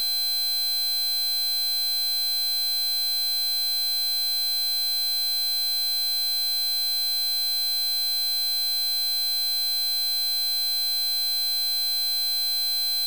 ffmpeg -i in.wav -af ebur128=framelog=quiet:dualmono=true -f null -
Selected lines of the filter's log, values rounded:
Integrated loudness:
  I:         -18.7 LUFS
  Threshold: -28.7 LUFS
Loudness range:
  LRA:         0.0 LU
  Threshold: -38.7 LUFS
  LRA low:   -18.7 LUFS
  LRA high:  -18.7 LUFS